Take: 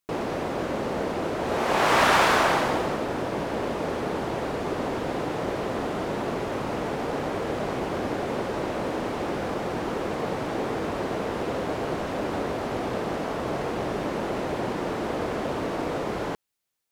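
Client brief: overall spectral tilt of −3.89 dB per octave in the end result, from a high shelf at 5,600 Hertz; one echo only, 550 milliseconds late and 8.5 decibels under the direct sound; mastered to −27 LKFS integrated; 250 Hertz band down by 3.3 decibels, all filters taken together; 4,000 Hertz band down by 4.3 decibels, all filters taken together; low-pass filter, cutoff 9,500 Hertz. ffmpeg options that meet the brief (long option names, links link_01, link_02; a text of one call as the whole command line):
ffmpeg -i in.wav -af "lowpass=9500,equalizer=frequency=250:width_type=o:gain=-4.5,equalizer=frequency=4000:width_type=o:gain=-3.5,highshelf=frequency=5600:gain=-6,aecho=1:1:550:0.376,volume=1dB" out.wav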